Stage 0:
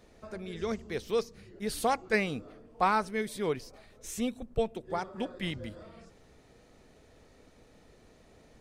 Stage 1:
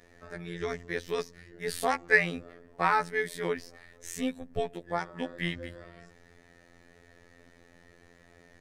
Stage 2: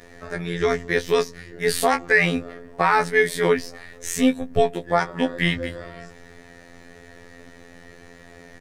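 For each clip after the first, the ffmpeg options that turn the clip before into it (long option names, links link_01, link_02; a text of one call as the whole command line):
ffmpeg -i in.wav -af "equalizer=frequency=1800:width_type=o:width=0.37:gain=12,afftfilt=real='hypot(re,im)*cos(PI*b)':imag='0':win_size=2048:overlap=0.75,volume=3dB" out.wav
ffmpeg -i in.wav -filter_complex "[0:a]asplit=2[link_01][link_02];[link_02]adelay=19,volume=-9dB[link_03];[link_01][link_03]amix=inputs=2:normalize=0,alimiter=level_in=14dB:limit=-1dB:release=50:level=0:latency=1,volume=-2.5dB" out.wav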